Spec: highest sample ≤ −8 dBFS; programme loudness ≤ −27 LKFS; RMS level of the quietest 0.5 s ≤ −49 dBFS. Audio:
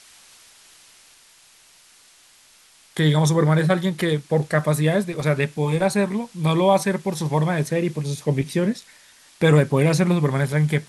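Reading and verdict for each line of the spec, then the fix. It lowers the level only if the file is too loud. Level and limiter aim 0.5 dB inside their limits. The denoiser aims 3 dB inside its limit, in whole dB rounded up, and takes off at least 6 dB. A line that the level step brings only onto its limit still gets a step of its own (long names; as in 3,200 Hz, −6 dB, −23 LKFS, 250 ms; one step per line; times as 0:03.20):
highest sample −4.0 dBFS: out of spec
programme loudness −21.0 LKFS: out of spec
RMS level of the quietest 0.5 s −53 dBFS: in spec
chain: level −6.5 dB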